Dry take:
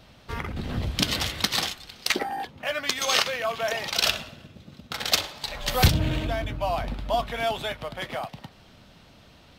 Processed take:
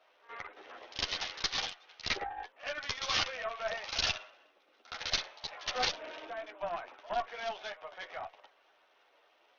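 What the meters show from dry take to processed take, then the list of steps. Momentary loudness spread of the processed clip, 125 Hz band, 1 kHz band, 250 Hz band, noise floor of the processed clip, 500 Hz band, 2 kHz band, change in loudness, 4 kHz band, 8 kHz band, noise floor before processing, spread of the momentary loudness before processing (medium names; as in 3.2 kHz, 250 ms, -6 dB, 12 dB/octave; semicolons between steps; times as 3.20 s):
14 LU, -25.0 dB, -8.5 dB, -20.5 dB, -68 dBFS, -10.5 dB, -8.5 dB, -9.5 dB, -8.5 dB, -12.0 dB, -53 dBFS, 12 LU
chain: local Wiener filter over 9 samples; Bessel high-pass 650 Hz, order 8; pre-echo 67 ms -16.5 dB; chorus voices 4, 0.64 Hz, delay 11 ms, depth 1.5 ms; valve stage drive 23 dB, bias 0.7; SBC 64 kbps 48 kHz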